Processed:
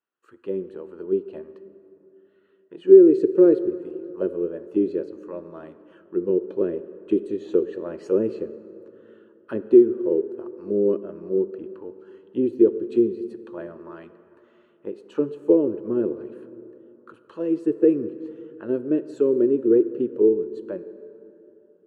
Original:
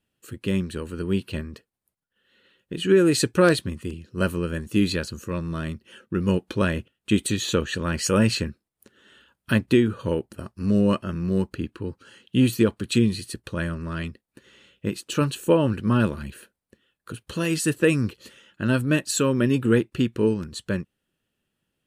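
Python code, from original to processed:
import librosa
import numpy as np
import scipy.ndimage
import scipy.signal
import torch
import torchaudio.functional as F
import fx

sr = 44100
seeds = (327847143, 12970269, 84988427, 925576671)

y = fx.peak_eq(x, sr, hz=360.0, db=10.5, octaves=0.99)
y = fx.auto_wah(y, sr, base_hz=400.0, top_hz=1200.0, q=3.0, full_db=-13.5, direction='down')
y = fx.rev_plate(y, sr, seeds[0], rt60_s=3.2, hf_ratio=0.5, predelay_ms=0, drr_db=12.5)
y = F.gain(torch.from_numpy(y), -1.0).numpy()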